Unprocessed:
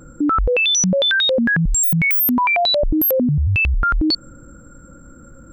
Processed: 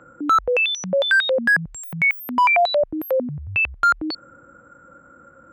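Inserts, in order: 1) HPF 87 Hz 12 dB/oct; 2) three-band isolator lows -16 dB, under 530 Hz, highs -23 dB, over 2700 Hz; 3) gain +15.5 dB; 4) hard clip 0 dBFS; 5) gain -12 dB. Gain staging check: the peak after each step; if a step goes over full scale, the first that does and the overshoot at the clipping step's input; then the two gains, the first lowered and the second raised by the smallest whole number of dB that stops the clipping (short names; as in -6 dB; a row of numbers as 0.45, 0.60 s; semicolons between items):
-7.5, -11.5, +4.0, 0.0, -12.0 dBFS; step 3, 4.0 dB; step 3 +11.5 dB, step 5 -8 dB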